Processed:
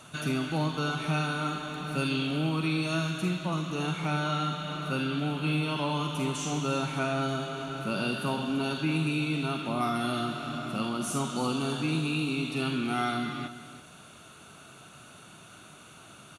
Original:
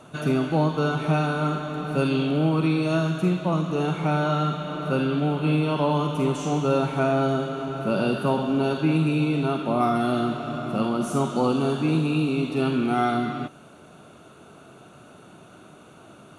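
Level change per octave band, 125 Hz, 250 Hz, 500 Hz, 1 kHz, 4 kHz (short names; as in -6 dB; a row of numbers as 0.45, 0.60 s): -6.5, -7.0, -10.0, -6.0, +1.5 dB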